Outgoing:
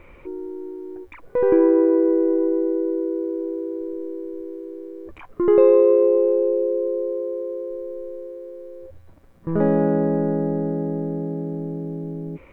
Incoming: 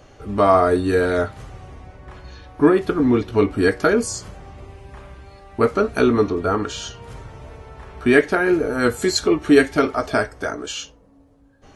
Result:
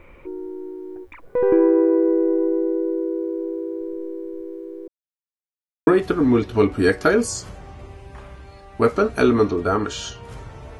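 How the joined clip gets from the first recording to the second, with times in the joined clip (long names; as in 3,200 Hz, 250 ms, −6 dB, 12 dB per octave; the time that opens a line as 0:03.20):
outgoing
0:04.88–0:05.87: silence
0:05.87: continue with incoming from 0:02.66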